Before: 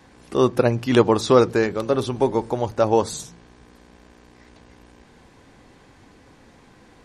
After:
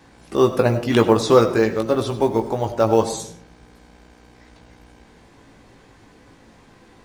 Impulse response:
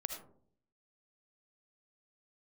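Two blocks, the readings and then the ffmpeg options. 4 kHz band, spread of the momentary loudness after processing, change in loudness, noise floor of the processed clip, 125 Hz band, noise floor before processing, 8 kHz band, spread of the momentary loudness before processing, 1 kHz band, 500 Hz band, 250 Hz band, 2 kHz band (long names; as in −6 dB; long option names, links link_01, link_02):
+1.0 dB, 11 LU, +1.5 dB, −51 dBFS, +1.5 dB, −52 dBFS, +1.5 dB, 10 LU, +1.0 dB, +1.5 dB, +1.5 dB, +1.0 dB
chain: -filter_complex "[0:a]acrusher=bits=9:mode=log:mix=0:aa=0.000001,asplit=2[link_01][link_02];[1:a]atrim=start_sample=2205,adelay=18[link_03];[link_02][link_03]afir=irnorm=-1:irlink=0,volume=-4.5dB[link_04];[link_01][link_04]amix=inputs=2:normalize=0"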